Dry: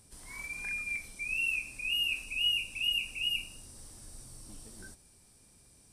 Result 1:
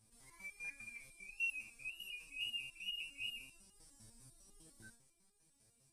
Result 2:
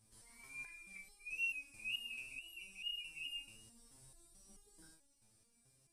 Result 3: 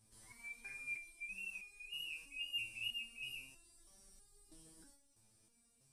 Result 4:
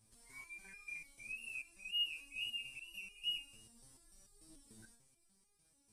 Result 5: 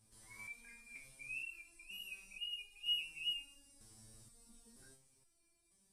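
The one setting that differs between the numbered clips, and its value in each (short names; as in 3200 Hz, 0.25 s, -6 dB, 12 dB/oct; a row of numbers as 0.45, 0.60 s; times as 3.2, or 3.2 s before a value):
stepped resonator, rate: 10, 4.6, 3.1, 6.8, 2.1 Hz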